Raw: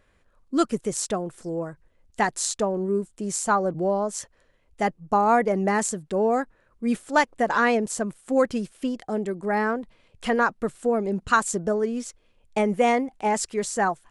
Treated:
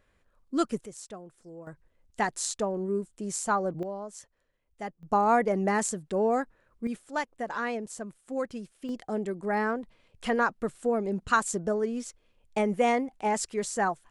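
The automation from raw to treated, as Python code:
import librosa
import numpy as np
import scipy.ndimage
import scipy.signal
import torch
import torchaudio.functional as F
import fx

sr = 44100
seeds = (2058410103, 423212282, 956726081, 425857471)

y = fx.gain(x, sr, db=fx.steps((0.0, -5.0), (0.86, -16.0), (1.67, -5.0), (3.83, -13.0), (5.03, -3.5), (6.87, -11.0), (8.89, -4.0)))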